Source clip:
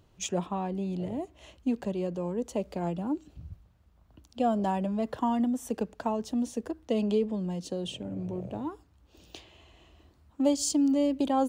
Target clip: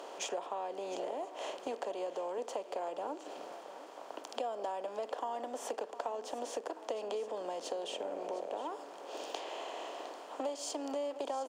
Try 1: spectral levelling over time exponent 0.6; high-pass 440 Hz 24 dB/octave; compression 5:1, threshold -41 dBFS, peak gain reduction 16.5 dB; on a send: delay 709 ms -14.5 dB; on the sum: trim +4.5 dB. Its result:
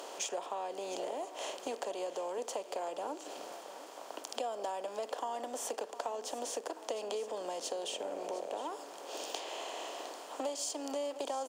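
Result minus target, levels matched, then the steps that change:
8 kHz band +5.5 dB
add after high-pass: treble shelf 4.3 kHz -12 dB

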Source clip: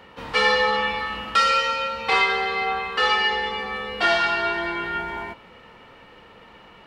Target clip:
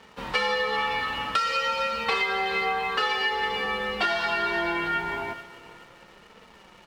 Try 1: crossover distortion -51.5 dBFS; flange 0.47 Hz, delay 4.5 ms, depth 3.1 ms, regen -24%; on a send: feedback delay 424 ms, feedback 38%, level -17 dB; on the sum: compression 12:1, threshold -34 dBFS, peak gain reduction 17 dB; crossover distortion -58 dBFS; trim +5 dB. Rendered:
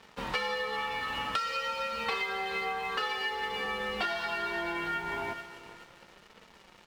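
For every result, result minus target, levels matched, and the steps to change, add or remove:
compression: peak gain reduction +7 dB; first crossover distortion: distortion +10 dB
change: compression 12:1, threshold -26.5 dBFS, peak gain reduction 10.5 dB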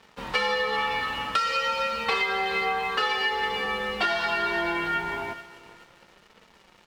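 first crossover distortion: distortion +10 dB
change: first crossover distortion -61.5 dBFS

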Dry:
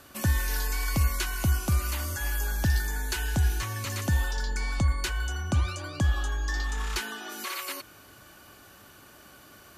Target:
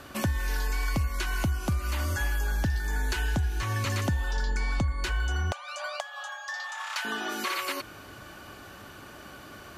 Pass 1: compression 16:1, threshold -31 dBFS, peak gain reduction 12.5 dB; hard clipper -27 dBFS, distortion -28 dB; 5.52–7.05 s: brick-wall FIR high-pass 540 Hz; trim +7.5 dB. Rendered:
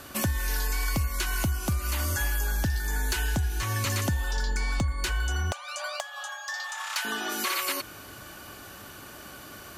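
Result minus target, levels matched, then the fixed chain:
8 kHz band +5.5 dB
compression 16:1, threshold -31 dBFS, peak gain reduction 12.5 dB; treble shelf 6 kHz -11.5 dB; hard clipper -27 dBFS, distortion -32 dB; 5.52–7.05 s: brick-wall FIR high-pass 540 Hz; trim +7.5 dB

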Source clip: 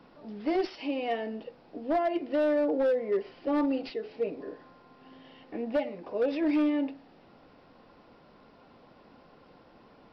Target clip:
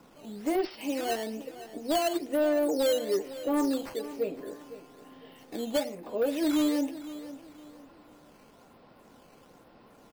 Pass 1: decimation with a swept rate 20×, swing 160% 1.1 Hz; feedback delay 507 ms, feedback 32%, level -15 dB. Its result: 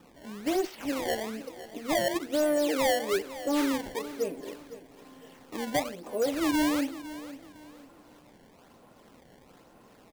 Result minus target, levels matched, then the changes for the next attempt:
decimation with a swept rate: distortion +10 dB
change: decimation with a swept rate 7×, swing 160% 1.1 Hz

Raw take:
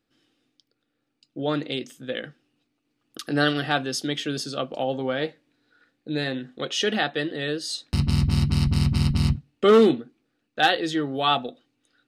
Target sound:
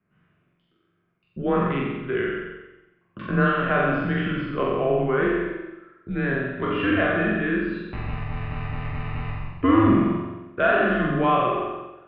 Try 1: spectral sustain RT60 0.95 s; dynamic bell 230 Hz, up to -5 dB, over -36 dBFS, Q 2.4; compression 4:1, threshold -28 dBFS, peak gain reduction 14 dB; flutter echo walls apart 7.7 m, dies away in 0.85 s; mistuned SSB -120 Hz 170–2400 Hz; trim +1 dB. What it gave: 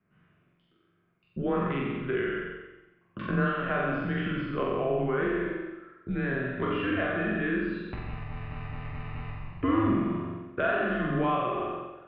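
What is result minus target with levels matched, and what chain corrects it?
compression: peak gain reduction +8 dB
spectral sustain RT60 0.95 s; dynamic bell 230 Hz, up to -5 dB, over -36 dBFS, Q 2.4; compression 4:1, threshold -17.5 dBFS, peak gain reduction 6.5 dB; flutter echo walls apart 7.7 m, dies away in 0.85 s; mistuned SSB -120 Hz 170–2400 Hz; trim +1 dB

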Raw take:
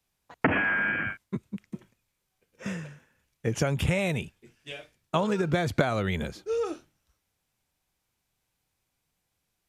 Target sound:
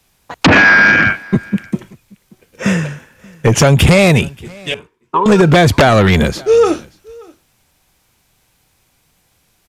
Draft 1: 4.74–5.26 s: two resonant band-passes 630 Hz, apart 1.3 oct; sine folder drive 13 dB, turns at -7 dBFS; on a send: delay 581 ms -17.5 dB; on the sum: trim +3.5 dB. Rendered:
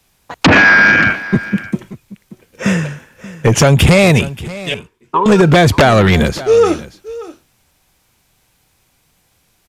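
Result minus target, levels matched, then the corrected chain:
echo-to-direct +8 dB
4.74–5.26 s: two resonant band-passes 630 Hz, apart 1.3 oct; sine folder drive 13 dB, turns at -7 dBFS; on a send: delay 581 ms -25.5 dB; on the sum: trim +3.5 dB

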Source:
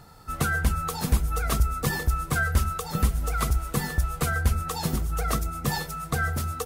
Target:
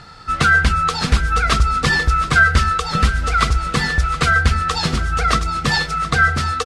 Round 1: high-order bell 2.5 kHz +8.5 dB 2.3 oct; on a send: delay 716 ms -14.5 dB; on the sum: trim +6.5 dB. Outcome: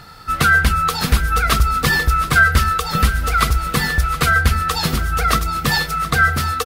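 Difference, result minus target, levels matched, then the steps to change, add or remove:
8 kHz band +2.5 dB
add first: low-pass 8.2 kHz 24 dB/octave

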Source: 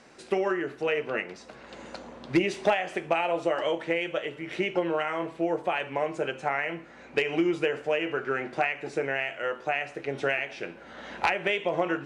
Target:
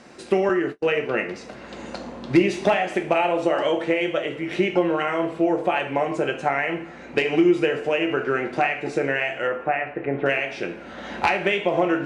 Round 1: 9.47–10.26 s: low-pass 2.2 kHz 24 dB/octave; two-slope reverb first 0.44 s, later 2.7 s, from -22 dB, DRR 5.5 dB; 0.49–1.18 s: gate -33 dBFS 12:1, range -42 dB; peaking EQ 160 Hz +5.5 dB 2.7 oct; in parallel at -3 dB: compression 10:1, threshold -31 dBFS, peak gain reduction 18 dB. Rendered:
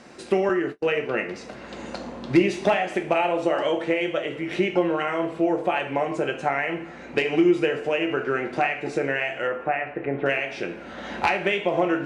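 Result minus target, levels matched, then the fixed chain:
compression: peak gain reduction +7 dB
9.47–10.26 s: low-pass 2.2 kHz 24 dB/octave; two-slope reverb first 0.44 s, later 2.7 s, from -22 dB, DRR 5.5 dB; 0.49–1.18 s: gate -33 dBFS 12:1, range -42 dB; peaking EQ 160 Hz +5.5 dB 2.7 oct; in parallel at -3 dB: compression 10:1, threshold -23.5 dBFS, peak gain reduction 11.5 dB

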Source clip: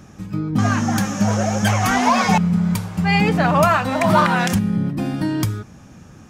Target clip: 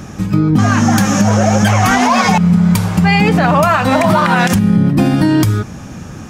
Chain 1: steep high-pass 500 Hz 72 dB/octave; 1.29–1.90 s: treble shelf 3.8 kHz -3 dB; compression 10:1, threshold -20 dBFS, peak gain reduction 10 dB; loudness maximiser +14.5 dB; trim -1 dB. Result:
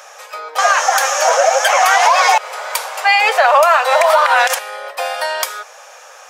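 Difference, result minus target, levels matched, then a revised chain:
500 Hz band +3.0 dB
1.29–1.90 s: treble shelf 3.8 kHz -3 dB; compression 10:1, threshold -20 dBFS, peak gain reduction 11 dB; loudness maximiser +14.5 dB; trim -1 dB

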